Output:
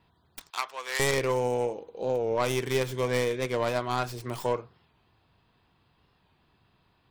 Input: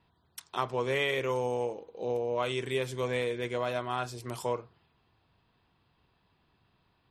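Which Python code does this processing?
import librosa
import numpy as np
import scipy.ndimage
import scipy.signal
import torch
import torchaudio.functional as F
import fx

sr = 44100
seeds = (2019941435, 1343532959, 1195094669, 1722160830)

y = fx.tracing_dist(x, sr, depth_ms=0.29)
y = fx.highpass(y, sr, hz=1200.0, slope=12, at=(0.5, 1.0))
y = fx.record_warp(y, sr, rpm=45.0, depth_cents=100.0)
y = y * librosa.db_to_amplitude(3.5)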